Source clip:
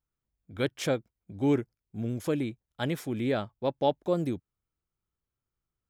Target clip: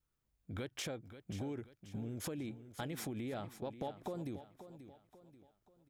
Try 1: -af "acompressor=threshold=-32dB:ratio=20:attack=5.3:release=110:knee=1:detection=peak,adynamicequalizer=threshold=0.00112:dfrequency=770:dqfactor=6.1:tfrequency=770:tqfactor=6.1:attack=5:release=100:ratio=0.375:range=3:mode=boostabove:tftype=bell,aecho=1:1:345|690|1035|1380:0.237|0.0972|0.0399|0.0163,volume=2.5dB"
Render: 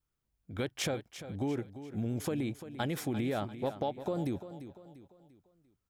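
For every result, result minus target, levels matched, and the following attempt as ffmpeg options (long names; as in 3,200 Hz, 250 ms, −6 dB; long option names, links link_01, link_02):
downward compressor: peak gain reduction −8.5 dB; echo 190 ms early
-af "acompressor=threshold=-41dB:ratio=20:attack=5.3:release=110:knee=1:detection=peak,adynamicequalizer=threshold=0.00112:dfrequency=770:dqfactor=6.1:tfrequency=770:tqfactor=6.1:attack=5:release=100:ratio=0.375:range=3:mode=boostabove:tftype=bell,aecho=1:1:345|690|1035|1380:0.237|0.0972|0.0399|0.0163,volume=2.5dB"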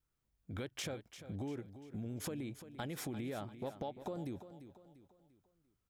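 echo 190 ms early
-af "acompressor=threshold=-41dB:ratio=20:attack=5.3:release=110:knee=1:detection=peak,adynamicequalizer=threshold=0.00112:dfrequency=770:dqfactor=6.1:tfrequency=770:tqfactor=6.1:attack=5:release=100:ratio=0.375:range=3:mode=boostabove:tftype=bell,aecho=1:1:535|1070|1605|2140:0.237|0.0972|0.0399|0.0163,volume=2.5dB"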